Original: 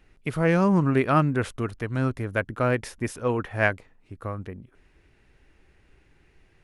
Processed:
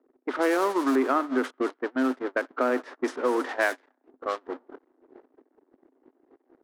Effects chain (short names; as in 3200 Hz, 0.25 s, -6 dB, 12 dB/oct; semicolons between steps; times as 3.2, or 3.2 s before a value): zero-crossing step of -24 dBFS; rippled Chebyshev high-pass 250 Hz, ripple 3 dB; compressor 3:1, threshold -27 dBFS, peak gain reduction 9 dB; bell 2500 Hz -6 dB 0.35 oct; thinning echo 95 ms, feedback 79%, high-pass 640 Hz, level -14 dB; gate -31 dBFS, range -30 dB; low-pass opened by the level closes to 450 Hz, open at -25.5 dBFS; 0.95–3.49 high shelf 3400 Hz -11 dB; gain +5.5 dB